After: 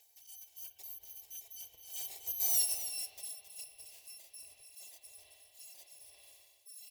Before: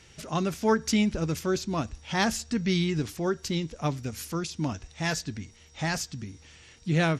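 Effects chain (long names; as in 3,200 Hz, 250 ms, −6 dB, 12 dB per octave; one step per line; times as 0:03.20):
samples in bit-reversed order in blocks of 256 samples
source passing by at 0:02.67, 21 m/s, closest 1.3 metres
in parallel at 0 dB: downward compressor, threshold −46 dBFS, peak gain reduction 19 dB
on the sum: wrong playback speed 24 fps film run at 25 fps
phaser with its sweep stopped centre 570 Hz, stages 4
spring reverb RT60 3 s, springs 49 ms, chirp 25 ms, DRR 5.5 dB
reversed playback
upward compression, threshold −53 dBFS
reversed playback
high-pass filter 340 Hz 6 dB per octave
single-tap delay 267 ms −11 dB
one half of a high-frequency compander encoder only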